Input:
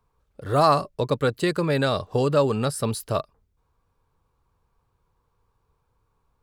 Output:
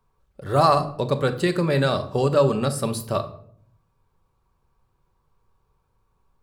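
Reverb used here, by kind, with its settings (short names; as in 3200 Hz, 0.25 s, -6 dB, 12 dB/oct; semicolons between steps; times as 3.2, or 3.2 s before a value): shoebox room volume 970 m³, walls furnished, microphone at 1.1 m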